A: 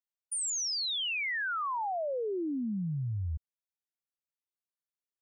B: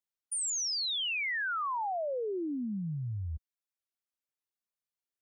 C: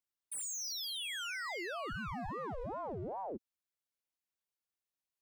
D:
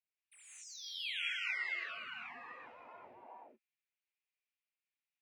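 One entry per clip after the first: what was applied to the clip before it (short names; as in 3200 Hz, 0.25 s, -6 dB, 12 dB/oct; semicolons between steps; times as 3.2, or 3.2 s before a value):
reverb removal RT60 0.68 s
hard clip -37.5 dBFS, distortion -11 dB; ring modulator with a swept carrier 550 Hz, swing 60%, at 2.5 Hz; gain +1 dB
band-pass 2400 Hz, Q 4.2; non-linear reverb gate 0.22 s rising, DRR -6 dB; gain +1.5 dB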